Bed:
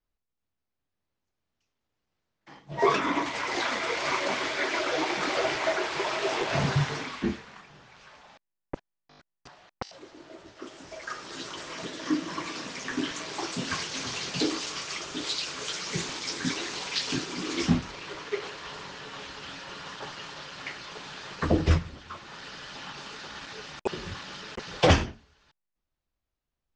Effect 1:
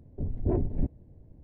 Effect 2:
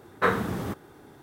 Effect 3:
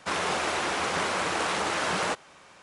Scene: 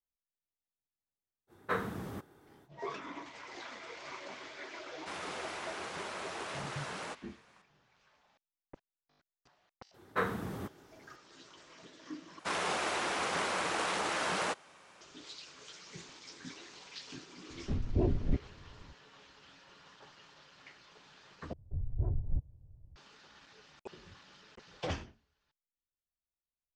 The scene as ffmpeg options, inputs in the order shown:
-filter_complex "[2:a]asplit=2[s0][s1];[3:a]asplit=2[s2][s3];[1:a]asplit=2[s4][s5];[0:a]volume=0.133[s6];[s3]lowshelf=f=78:g=-9.5[s7];[s5]firequalizer=gain_entry='entry(120,0);entry(210,-17);entry(820,-9);entry(1300,-6);entry(1900,-17)':delay=0.05:min_phase=1[s8];[s6]asplit=3[s9][s10][s11];[s9]atrim=end=12.394[s12];[s7]atrim=end=2.62,asetpts=PTS-STARTPTS,volume=0.531[s13];[s10]atrim=start=15.006:end=21.534[s14];[s8]atrim=end=1.43,asetpts=PTS-STARTPTS,volume=0.668[s15];[s11]atrim=start=22.956[s16];[s0]atrim=end=1.22,asetpts=PTS-STARTPTS,volume=0.299,afade=t=in:d=0.05,afade=t=out:st=1.17:d=0.05,adelay=1470[s17];[s2]atrim=end=2.62,asetpts=PTS-STARTPTS,volume=0.188,afade=t=in:d=0.004:c=hsin,afade=t=out:st=2.616:d=0.004:c=hsin,adelay=5000[s18];[s1]atrim=end=1.22,asetpts=PTS-STARTPTS,volume=0.355,afade=t=in:d=0.004:c=hsin,afade=t=out:st=1.216:d=0.004:c=hsin,adelay=438354S[s19];[s4]atrim=end=1.43,asetpts=PTS-STARTPTS,volume=0.75,afade=t=in:d=0.004:c=hsin,afade=t=out:st=1.426:d=0.004:c=hsin,adelay=17500[s20];[s12][s13]acrossfade=d=0.004:c1=hsin:c2=hsin[s21];[s21][s14]acrossfade=d=0.004:c1=hsin:c2=hsin[s22];[s22][s15]acrossfade=d=0.004:c1=hsin:c2=hsin[s23];[s23][s16]acrossfade=d=0.004:c1=hsin:c2=hsin[s24];[s24][s17][s18][s19][s20]amix=inputs=5:normalize=0"

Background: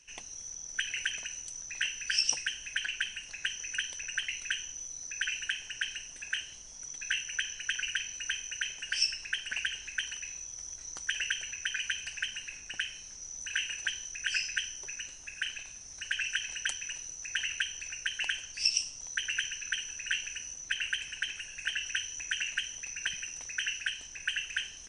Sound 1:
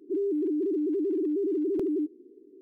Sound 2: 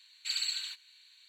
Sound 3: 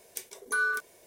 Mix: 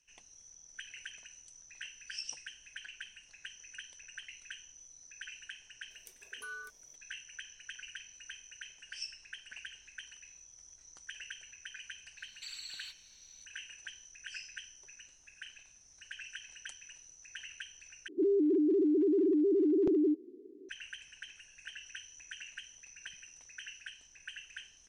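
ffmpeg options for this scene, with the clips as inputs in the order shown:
-filter_complex "[0:a]volume=0.211[s0];[2:a]acompressor=threshold=0.0126:ratio=6:attack=3.2:release=140:knee=1:detection=peak[s1];[1:a]aresample=16000,aresample=44100[s2];[s0]asplit=2[s3][s4];[s3]atrim=end=18.084[s5];[s2]atrim=end=2.61[s6];[s4]atrim=start=20.686[s7];[3:a]atrim=end=1.06,asetpts=PTS-STARTPTS,volume=0.141,afade=t=in:d=0.004:c=hsin,afade=t=out:st=1.056:d=0.004:c=hsin,adelay=5900[s8];[s1]atrim=end=1.28,asetpts=PTS-STARTPTS,volume=0.631,afade=t=in:d=0.004:c=hsin,afade=t=out:st=1.276:d=0.004:c=hsin,adelay=12170[s9];[s5][s6]acrossfade=d=0.004:c1=hsin:c2=hsin[s10];[s10][s7]acrossfade=d=0.004:c1=hsin:c2=hsin[s11];[s11][s8][s9]amix=inputs=3:normalize=0"

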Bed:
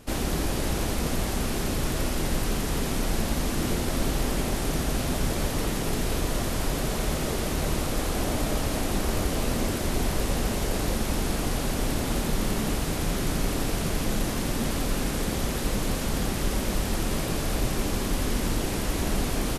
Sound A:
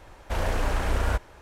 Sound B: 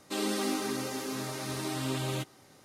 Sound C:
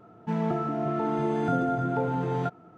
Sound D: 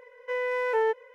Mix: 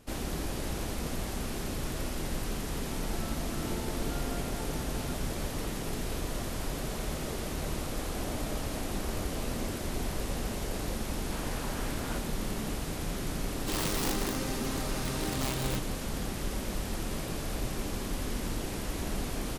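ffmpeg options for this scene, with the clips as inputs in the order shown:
-filter_complex "[0:a]volume=0.422[s0];[1:a]highpass=650[s1];[2:a]aeval=exprs='(mod(17.8*val(0)+1,2)-1)/17.8':c=same[s2];[3:a]atrim=end=2.77,asetpts=PTS-STARTPTS,volume=0.15,afade=t=in:d=0.004:c=hsin,afade=t=out:st=2.766:d=0.004:c=hsin,adelay=2630[s3];[s1]atrim=end=1.41,asetpts=PTS-STARTPTS,volume=0.299,afade=t=in:d=0.004:c=hsin,afade=t=out:st=1.406:d=0.004:c=hsin,adelay=11010[s4];[s2]atrim=end=2.64,asetpts=PTS-STARTPTS,volume=0.841,afade=t=in:d=0.004:c=hsin,afade=t=out:st=2.636:d=0.004:c=hsin,adelay=13560[s5];[s0][s3][s4][s5]amix=inputs=4:normalize=0"

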